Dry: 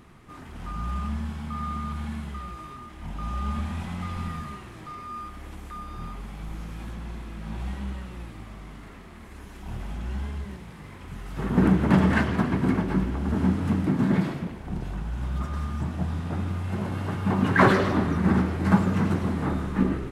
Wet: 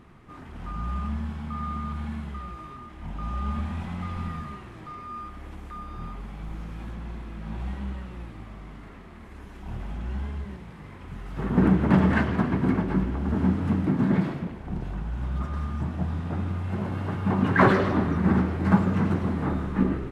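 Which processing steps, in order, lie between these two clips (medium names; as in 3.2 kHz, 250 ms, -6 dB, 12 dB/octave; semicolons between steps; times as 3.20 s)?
treble shelf 4.4 kHz -10.5 dB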